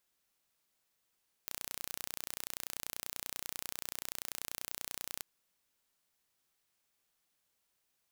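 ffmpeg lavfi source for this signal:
-f lavfi -i "aevalsrc='0.251*eq(mod(n,1455),0)':d=3.75:s=44100"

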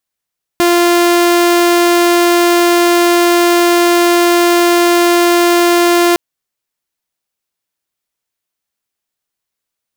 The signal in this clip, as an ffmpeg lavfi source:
-f lavfi -i "aevalsrc='0.562*(2*mod(347*t,1)-1)':d=5.56:s=44100"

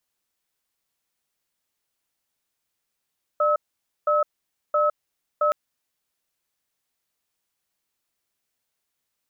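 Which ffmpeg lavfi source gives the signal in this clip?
-f lavfi -i "aevalsrc='0.1*(sin(2*PI*598*t)+sin(2*PI*1290*t))*clip(min(mod(t,0.67),0.16-mod(t,0.67))/0.005,0,1)':d=2.12:s=44100"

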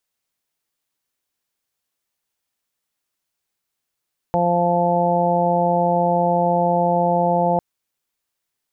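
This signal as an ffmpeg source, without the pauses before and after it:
-f lavfi -i "aevalsrc='0.0794*sin(2*PI*174*t)+0.0398*sin(2*PI*348*t)+0.0944*sin(2*PI*522*t)+0.1*sin(2*PI*696*t)+0.0891*sin(2*PI*870*t)':d=3.25:s=44100"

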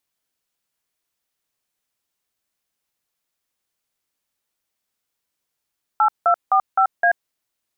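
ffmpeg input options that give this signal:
-f lavfi -i "aevalsrc='0.178*clip(min(mod(t,0.258),0.084-mod(t,0.258))/0.002,0,1)*(eq(floor(t/0.258),0)*(sin(2*PI*852*mod(t,0.258))+sin(2*PI*1336*mod(t,0.258)))+eq(floor(t/0.258),1)*(sin(2*PI*697*mod(t,0.258))+sin(2*PI*1336*mod(t,0.258)))+eq(floor(t/0.258),2)*(sin(2*PI*770*mod(t,0.258))+sin(2*PI*1209*mod(t,0.258)))+eq(floor(t/0.258),3)*(sin(2*PI*770*mod(t,0.258))+sin(2*PI*1336*mod(t,0.258)))+eq(floor(t/0.258),4)*(sin(2*PI*697*mod(t,0.258))+sin(2*PI*1633*mod(t,0.258))))':d=1.29:s=44100"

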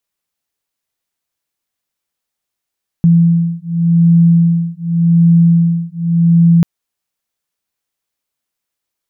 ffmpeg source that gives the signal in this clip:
-f lavfi -i "aevalsrc='0.299*(sin(2*PI*168*t)+sin(2*PI*168.87*t))':d=3.59:s=44100"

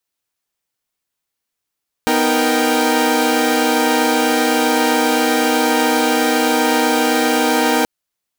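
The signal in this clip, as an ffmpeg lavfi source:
-f lavfi -i "aevalsrc='0.15*((2*mod(246.94*t,1)-1)+(2*mod(311.13*t,1)-1)+(2*mod(466.16*t,1)-1)+(2*mod(783.99*t,1)-1))':d=5.78:s=44100"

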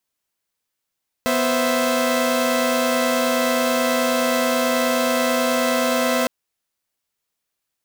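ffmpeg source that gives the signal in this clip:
-f lavfi -i "aevalsrc='0.106*((2*mod(246.94*t,1)-1)+(2*mod(523.25*t,1)-1)+(2*mod(659.26*t,1)-1))':d=5.01:s=44100"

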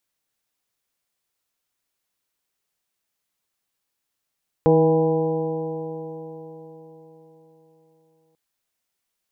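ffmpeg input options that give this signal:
-f lavfi -i "aevalsrc='0.119*pow(10,-3*t/4.34)*sin(2*PI*159.14*t)+0.106*pow(10,-3*t/4.34)*sin(2*PI*319.08*t)+0.211*pow(10,-3*t/4.34)*sin(2*PI*480.64*t)+0.0376*pow(10,-3*t/4.34)*sin(2*PI*644.59*t)+0.0668*pow(10,-3*t/4.34)*sin(2*PI*811.72*t)+0.0266*pow(10,-3*t/4.34)*sin(2*PI*982.76*t)':d=3.69:s=44100"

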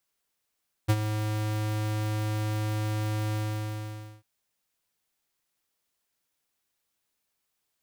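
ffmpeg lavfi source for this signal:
-f lavfi -i "aevalsrc='0.106*(2*lt(mod(107*t,1),0.5)-1)':d=3.347:s=44100,afade=t=in:d=0.02,afade=t=out:st=0.02:d=0.052:silence=0.335,afade=t=out:st=2.46:d=0.887"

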